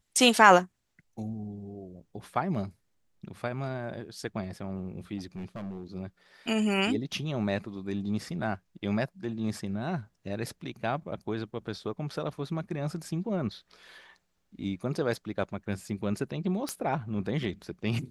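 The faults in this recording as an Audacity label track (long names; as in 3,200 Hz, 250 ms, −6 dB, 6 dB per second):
5.180000	5.840000	clipping −33.5 dBFS
16.690000	16.690000	click −17 dBFS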